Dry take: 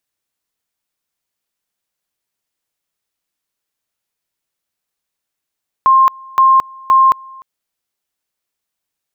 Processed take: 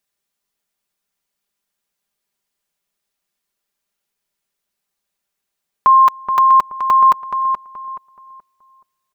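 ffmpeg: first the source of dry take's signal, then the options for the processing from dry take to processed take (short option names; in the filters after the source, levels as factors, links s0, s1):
-f lavfi -i "aevalsrc='pow(10,(-5.5-26.5*gte(mod(t,0.52),0.22))/20)*sin(2*PI*1060*t)':d=1.56:s=44100"
-filter_complex "[0:a]aecho=1:1:5:0.51,asplit=2[s0][s1];[s1]adelay=426,lowpass=f=1600:p=1,volume=0.501,asplit=2[s2][s3];[s3]adelay=426,lowpass=f=1600:p=1,volume=0.32,asplit=2[s4][s5];[s5]adelay=426,lowpass=f=1600:p=1,volume=0.32,asplit=2[s6][s7];[s7]adelay=426,lowpass=f=1600:p=1,volume=0.32[s8];[s2][s4][s6][s8]amix=inputs=4:normalize=0[s9];[s0][s9]amix=inputs=2:normalize=0"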